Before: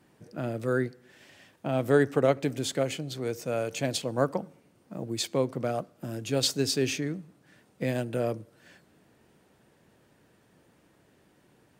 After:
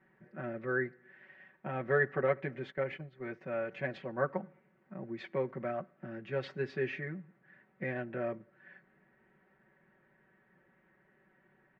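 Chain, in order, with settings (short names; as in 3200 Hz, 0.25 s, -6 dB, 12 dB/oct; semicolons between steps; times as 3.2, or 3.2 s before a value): 2.7–3.41 gate -34 dBFS, range -13 dB; ladder low-pass 2100 Hz, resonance 60%; comb 5.3 ms, depth 99%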